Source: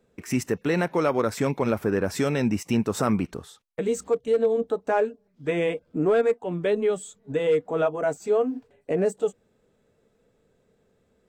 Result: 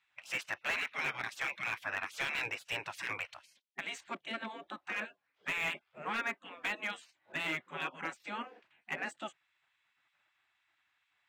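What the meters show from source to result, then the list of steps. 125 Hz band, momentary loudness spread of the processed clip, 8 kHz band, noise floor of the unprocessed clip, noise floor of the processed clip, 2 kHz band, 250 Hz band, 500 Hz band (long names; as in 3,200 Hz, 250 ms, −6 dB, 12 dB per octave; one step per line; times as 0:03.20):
−24.0 dB, 10 LU, −12.5 dB, −68 dBFS, −80 dBFS, +0.5 dB, −23.0 dB, −26.0 dB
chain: three-way crossover with the lows and the highs turned down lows −21 dB, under 190 Hz, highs −18 dB, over 2,600 Hz
gate on every frequency bin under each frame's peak −20 dB weak
meter weighting curve D
slew-rate limiting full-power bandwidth 71 Hz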